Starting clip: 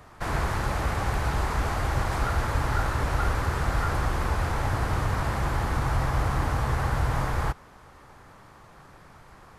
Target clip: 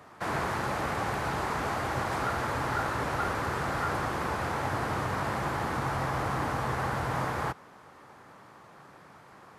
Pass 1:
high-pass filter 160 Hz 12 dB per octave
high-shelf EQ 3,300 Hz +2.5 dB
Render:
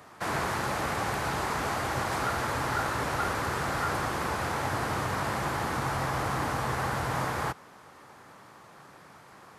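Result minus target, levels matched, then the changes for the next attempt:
8,000 Hz band +4.5 dB
change: high-shelf EQ 3,300 Hz −4 dB

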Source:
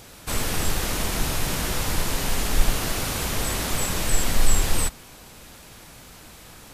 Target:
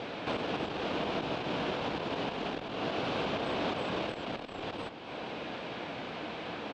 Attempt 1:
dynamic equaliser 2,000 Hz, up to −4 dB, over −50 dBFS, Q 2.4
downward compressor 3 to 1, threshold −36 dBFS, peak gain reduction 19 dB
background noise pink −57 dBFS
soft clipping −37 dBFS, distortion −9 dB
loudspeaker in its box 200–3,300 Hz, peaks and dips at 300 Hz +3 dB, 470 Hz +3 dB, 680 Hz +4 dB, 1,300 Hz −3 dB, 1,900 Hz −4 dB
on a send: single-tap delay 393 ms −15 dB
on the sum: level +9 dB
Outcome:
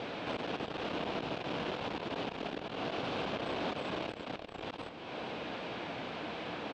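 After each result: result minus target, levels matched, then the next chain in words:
echo 111 ms late; soft clipping: distortion +8 dB
dynamic equaliser 2,000 Hz, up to −4 dB, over −50 dBFS, Q 2.4
downward compressor 3 to 1, threshold −36 dBFS, peak gain reduction 19 dB
background noise pink −57 dBFS
soft clipping −37 dBFS, distortion −9 dB
loudspeaker in its box 200–3,300 Hz, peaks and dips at 300 Hz +3 dB, 470 Hz +3 dB, 680 Hz +4 dB, 1,300 Hz −3 dB, 1,900 Hz −4 dB
on a send: single-tap delay 282 ms −15 dB
on the sum: level +9 dB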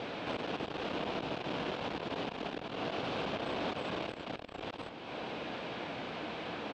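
soft clipping: distortion +8 dB
dynamic equaliser 2,000 Hz, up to −4 dB, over −50 dBFS, Q 2.4
downward compressor 3 to 1, threshold −36 dBFS, peak gain reduction 19 dB
background noise pink −57 dBFS
soft clipping −29 dBFS, distortion −17 dB
loudspeaker in its box 200–3,300 Hz, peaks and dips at 300 Hz +3 dB, 470 Hz +3 dB, 680 Hz +4 dB, 1,300 Hz −3 dB, 1,900 Hz −4 dB
on a send: single-tap delay 282 ms −15 dB
on the sum: level +9 dB

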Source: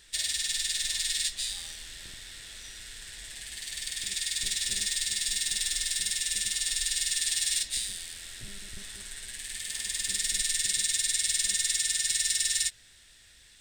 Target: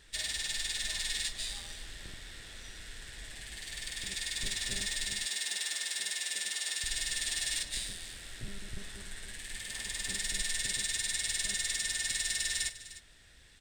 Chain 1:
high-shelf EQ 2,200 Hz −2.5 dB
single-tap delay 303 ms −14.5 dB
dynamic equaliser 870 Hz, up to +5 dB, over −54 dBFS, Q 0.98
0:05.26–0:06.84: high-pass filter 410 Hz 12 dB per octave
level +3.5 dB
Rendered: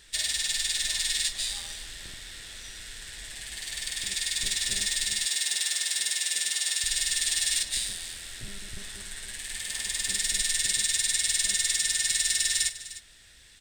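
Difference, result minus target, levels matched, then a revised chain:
2,000 Hz band −3.5 dB
high-shelf EQ 2,200 Hz −11.5 dB
single-tap delay 303 ms −14.5 dB
dynamic equaliser 870 Hz, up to +5 dB, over −54 dBFS, Q 0.98
0:05.26–0:06.84: high-pass filter 410 Hz 12 dB per octave
level +3.5 dB

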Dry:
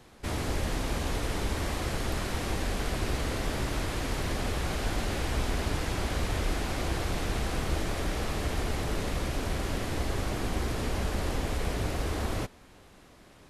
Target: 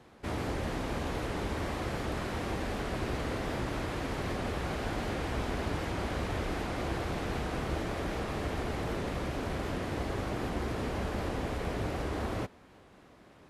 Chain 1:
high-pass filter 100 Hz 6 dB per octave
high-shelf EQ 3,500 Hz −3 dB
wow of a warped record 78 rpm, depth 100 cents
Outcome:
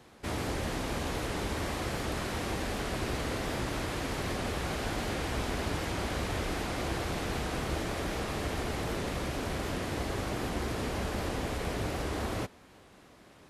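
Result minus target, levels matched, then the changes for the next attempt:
8,000 Hz band +6.0 dB
change: high-shelf EQ 3,500 Hz −11.5 dB

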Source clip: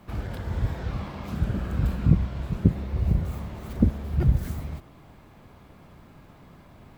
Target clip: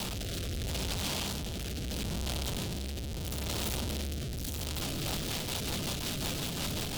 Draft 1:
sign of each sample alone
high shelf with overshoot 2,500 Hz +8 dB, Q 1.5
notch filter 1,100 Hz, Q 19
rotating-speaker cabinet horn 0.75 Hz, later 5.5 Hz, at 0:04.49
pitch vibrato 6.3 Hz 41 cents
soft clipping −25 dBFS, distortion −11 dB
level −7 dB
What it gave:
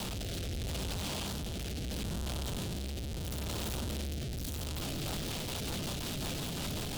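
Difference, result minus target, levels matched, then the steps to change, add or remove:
soft clipping: distortion +10 dB
change: soft clipping −15 dBFS, distortion −21 dB

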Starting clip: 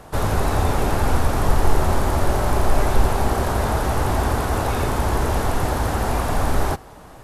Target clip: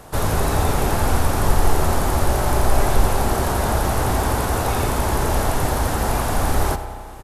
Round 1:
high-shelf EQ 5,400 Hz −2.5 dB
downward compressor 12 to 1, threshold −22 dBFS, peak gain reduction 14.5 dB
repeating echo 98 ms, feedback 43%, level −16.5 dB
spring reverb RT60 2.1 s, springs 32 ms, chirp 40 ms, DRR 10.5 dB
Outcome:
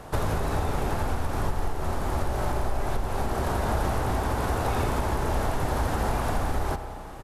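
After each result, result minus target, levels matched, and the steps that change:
downward compressor: peak gain reduction +14.5 dB; 8,000 Hz band −6.0 dB
remove: downward compressor 12 to 1, threshold −22 dBFS, peak gain reduction 14.5 dB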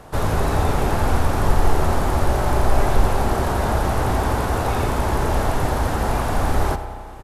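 8,000 Hz band −6.5 dB
change: high-shelf EQ 5,400 Hz +7 dB

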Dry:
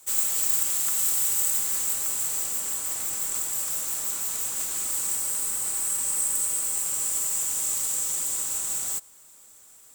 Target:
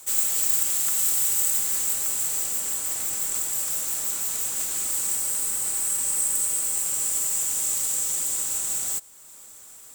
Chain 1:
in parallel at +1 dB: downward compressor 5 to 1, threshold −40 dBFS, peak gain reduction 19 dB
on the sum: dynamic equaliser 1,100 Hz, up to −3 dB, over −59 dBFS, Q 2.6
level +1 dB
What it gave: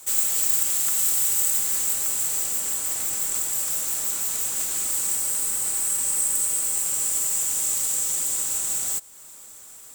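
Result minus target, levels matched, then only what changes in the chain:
downward compressor: peak gain reduction −9 dB
change: downward compressor 5 to 1, threshold −51.5 dBFS, peak gain reduction 28 dB

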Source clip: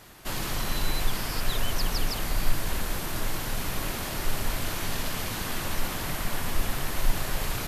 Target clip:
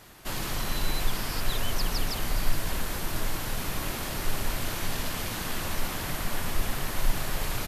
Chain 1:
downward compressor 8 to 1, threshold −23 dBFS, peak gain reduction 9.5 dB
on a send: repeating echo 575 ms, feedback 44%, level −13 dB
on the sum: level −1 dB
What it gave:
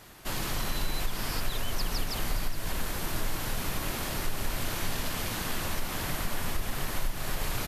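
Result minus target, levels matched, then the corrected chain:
downward compressor: peak gain reduction +9.5 dB
on a send: repeating echo 575 ms, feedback 44%, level −13 dB
on the sum: level −1 dB

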